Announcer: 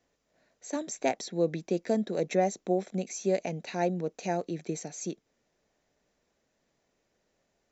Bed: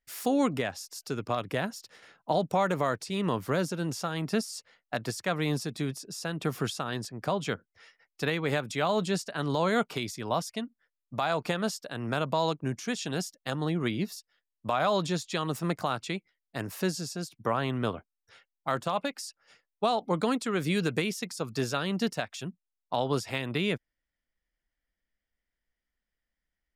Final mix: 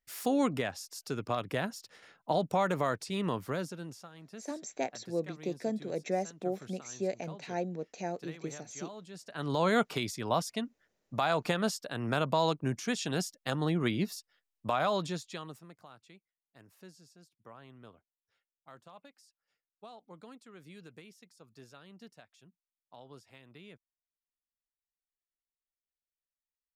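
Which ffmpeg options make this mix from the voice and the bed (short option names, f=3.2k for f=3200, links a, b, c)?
-filter_complex "[0:a]adelay=3750,volume=-6dB[a];[1:a]volume=16.5dB,afade=t=out:st=3.13:d=0.97:silence=0.141254,afade=t=in:st=9.14:d=0.53:silence=0.112202,afade=t=out:st=14.53:d=1.13:silence=0.0707946[b];[a][b]amix=inputs=2:normalize=0"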